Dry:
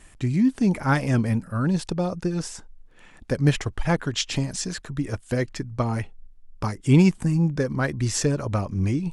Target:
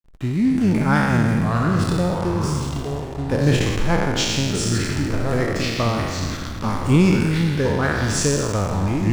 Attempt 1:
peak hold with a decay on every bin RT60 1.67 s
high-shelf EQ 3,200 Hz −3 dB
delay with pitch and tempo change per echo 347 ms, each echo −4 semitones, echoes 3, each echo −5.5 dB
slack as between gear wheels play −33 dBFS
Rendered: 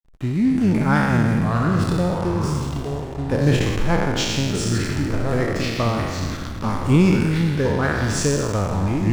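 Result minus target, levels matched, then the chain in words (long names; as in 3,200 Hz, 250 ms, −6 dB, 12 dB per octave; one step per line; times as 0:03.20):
8,000 Hz band −2.5 dB
peak hold with a decay on every bin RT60 1.67 s
delay with pitch and tempo change per echo 347 ms, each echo −4 semitones, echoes 3, each echo −5.5 dB
slack as between gear wheels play −33 dBFS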